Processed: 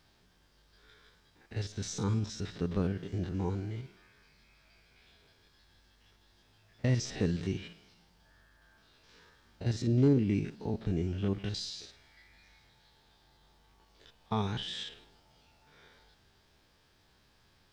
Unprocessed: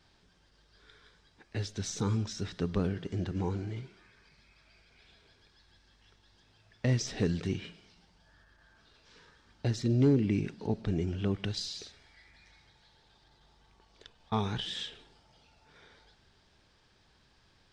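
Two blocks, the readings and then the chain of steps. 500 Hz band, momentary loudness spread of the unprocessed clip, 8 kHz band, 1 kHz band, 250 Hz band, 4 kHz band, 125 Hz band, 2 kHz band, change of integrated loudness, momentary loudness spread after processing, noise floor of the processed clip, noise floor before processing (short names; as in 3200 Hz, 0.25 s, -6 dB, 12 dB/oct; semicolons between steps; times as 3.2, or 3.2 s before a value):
-1.0 dB, 13 LU, -2.0 dB, -1.5 dB, -0.5 dB, -2.0 dB, -0.5 dB, -2.0 dB, -0.5 dB, 13 LU, -67 dBFS, -66 dBFS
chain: stepped spectrum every 50 ms; added noise pink -76 dBFS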